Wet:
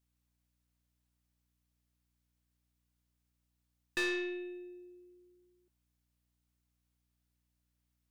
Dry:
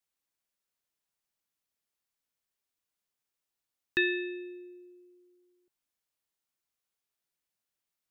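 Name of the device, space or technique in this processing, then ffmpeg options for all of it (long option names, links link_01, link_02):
valve amplifier with mains hum: -af "aeval=exprs='(tanh(28.2*val(0)+0.25)-tanh(0.25))/28.2':channel_layout=same,aeval=exprs='val(0)+0.0001*(sin(2*PI*60*n/s)+sin(2*PI*2*60*n/s)/2+sin(2*PI*3*60*n/s)/3+sin(2*PI*4*60*n/s)/4+sin(2*PI*5*60*n/s)/5)':channel_layout=same"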